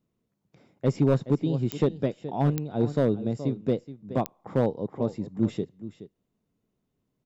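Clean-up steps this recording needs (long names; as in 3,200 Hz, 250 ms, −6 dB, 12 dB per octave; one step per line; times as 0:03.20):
clipped peaks rebuilt −14 dBFS
click removal
echo removal 423 ms −14 dB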